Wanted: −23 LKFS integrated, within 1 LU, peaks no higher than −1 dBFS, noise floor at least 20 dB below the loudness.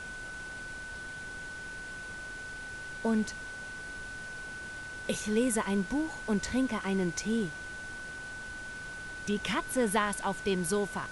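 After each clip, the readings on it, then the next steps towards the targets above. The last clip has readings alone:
interfering tone 1,500 Hz; level of the tone −40 dBFS; background noise floor −42 dBFS; target noise floor −54 dBFS; integrated loudness −34.0 LKFS; sample peak −14.5 dBFS; target loudness −23.0 LKFS
→ notch filter 1,500 Hz, Q 30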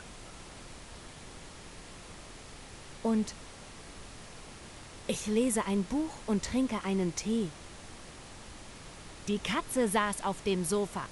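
interfering tone none found; background noise floor −49 dBFS; target noise floor −52 dBFS
→ noise reduction from a noise print 6 dB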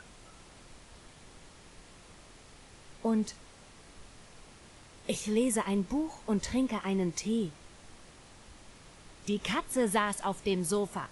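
background noise floor −55 dBFS; integrated loudness −32.0 LKFS; sample peak −15.5 dBFS; target loudness −23.0 LKFS
→ level +9 dB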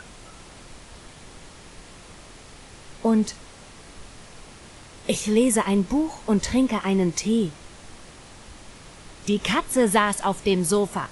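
integrated loudness −23.0 LKFS; sample peak −6.5 dBFS; background noise floor −46 dBFS

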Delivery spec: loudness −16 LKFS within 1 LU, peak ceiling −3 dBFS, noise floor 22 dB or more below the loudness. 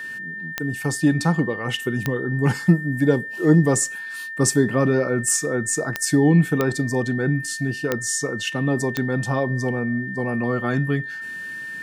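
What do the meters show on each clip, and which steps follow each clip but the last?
number of clicks 6; interfering tone 1,800 Hz; level of the tone −30 dBFS; integrated loudness −22.0 LKFS; sample peak −4.0 dBFS; target loudness −16.0 LKFS
→ click removal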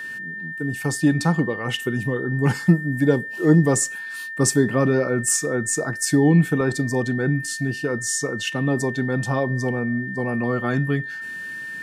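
number of clicks 0; interfering tone 1,800 Hz; level of the tone −30 dBFS
→ notch filter 1,800 Hz, Q 30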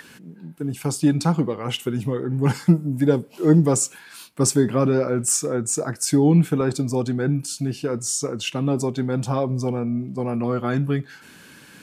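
interfering tone none found; integrated loudness −22.0 LKFS; sample peak −4.5 dBFS; target loudness −16.0 LKFS
→ level +6 dB
brickwall limiter −3 dBFS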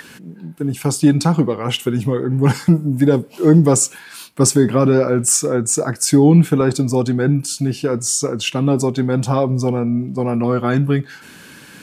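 integrated loudness −16.5 LKFS; sample peak −3.0 dBFS; background noise floor −41 dBFS

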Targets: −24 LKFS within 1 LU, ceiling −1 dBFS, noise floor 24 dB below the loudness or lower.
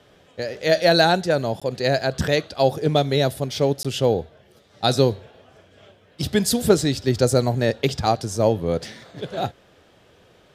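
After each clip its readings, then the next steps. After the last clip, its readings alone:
number of dropouts 2; longest dropout 16 ms; integrated loudness −21.5 LKFS; sample peak −2.5 dBFS; target loudness −24.0 LKFS
→ repair the gap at 0:01.60/0:03.83, 16 ms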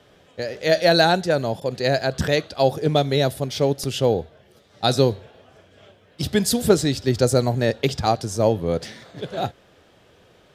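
number of dropouts 0; integrated loudness −21.5 LKFS; sample peak −2.5 dBFS; target loudness −24.0 LKFS
→ level −2.5 dB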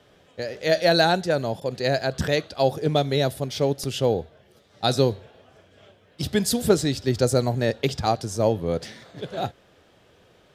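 integrated loudness −24.0 LKFS; sample peak −5.0 dBFS; background noise floor −58 dBFS

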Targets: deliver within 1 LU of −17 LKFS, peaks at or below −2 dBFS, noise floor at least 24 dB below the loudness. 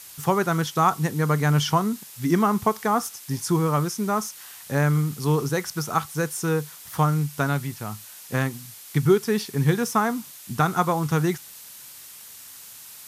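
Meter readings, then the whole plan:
background noise floor −44 dBFS; target noise floor −48 dBFS; integrated loudness −24.0 LKFS; sample peak −7.5 dBFS; target loudness −17.0 LKFS
→ broadband denoise 6 dB, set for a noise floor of −44 dBFS
level +7 dB
brickwall limiter −2 dBFS

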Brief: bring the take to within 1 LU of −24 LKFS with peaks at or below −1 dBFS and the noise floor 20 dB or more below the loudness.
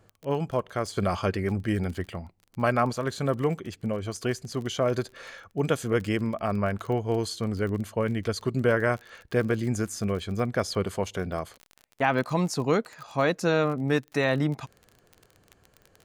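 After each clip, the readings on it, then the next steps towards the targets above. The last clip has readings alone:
crackle rate 30 per second; integrated loudness −28.0 LKFS; sample peak −8.5 dBFS; target loudness −24.0 LKFS
→ click removal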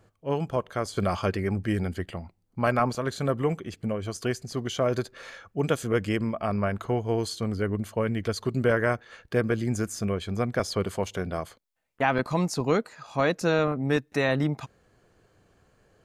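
crackle rate 0.062 per second; integrated loudness −28.0 LKFS; sample peak −8.5 dBFS; target loudness −24.0 LKFS
→ level +4 dB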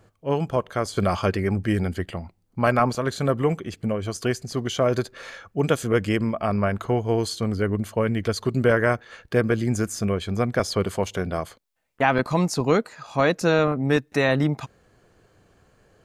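integrated loudness −24.0 LKFS; sample peak −4.5 dBFS; background noise floor −66 dBFS

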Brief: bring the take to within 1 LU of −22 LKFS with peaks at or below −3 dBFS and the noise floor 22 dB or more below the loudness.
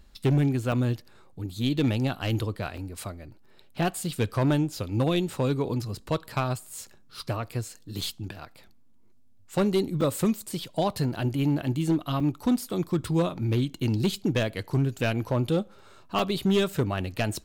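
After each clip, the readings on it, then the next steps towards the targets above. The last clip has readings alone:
share of clipped samples 0.9%; peaks flattened at −17.5 dBFS; number of dropouts 6; longest dropout 4.4 ms; integrated loudness −27.5 LKFS; sample peak −17.5 dBFS; target loudness −22.0 LKFS
→ clipped peaks rebuilt −17.5 dBFS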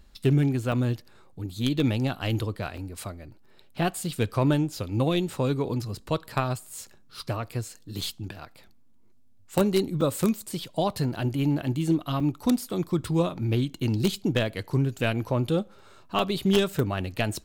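share of clipped samples 0.0%; number of dropouts 6; longest dropout 4.4 ms
→ repair the gap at 0:00.72/0:02.77/0:08.01/0:10.01/0:12.20/0:16.19, 4.4 ms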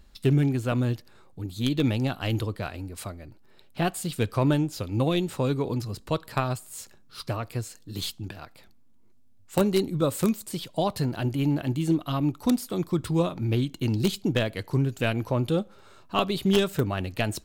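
number of dropouts 0; integrated loudness −27.0 LKFS; sample peak −7.0 dBFS; target loudness −22.0 LKFS
→ level +5 dB
brickwall limiter −3 dBFS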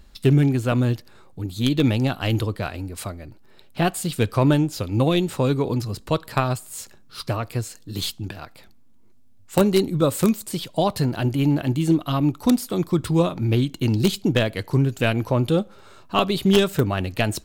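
integrated loudness −22.0 LKFS; sample peak −3.0 dBFS; background noise floor −48 dBFS

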